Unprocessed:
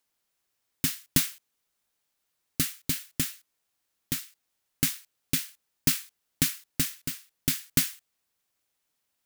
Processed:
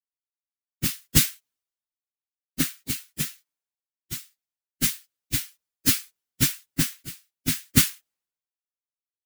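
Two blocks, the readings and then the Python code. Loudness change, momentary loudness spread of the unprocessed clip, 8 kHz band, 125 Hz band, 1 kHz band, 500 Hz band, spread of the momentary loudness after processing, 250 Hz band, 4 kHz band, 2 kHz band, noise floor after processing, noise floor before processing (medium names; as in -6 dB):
+4.0 dB, 9 LU, +3.5 dB, +5.5 dB, +4.5 dB, +2.5 dB, 16 LU, +4.0 dB, +3.5 dB, +3.5 dB, under -85 dBFS, -79 dBFS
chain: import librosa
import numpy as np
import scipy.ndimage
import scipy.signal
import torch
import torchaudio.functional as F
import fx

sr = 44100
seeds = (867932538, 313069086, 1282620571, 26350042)

y = fx.phase_scramble(x, sr, seeds[0], window_ms=50)
y = fx.band_widen(y, sr, depth_pct=100)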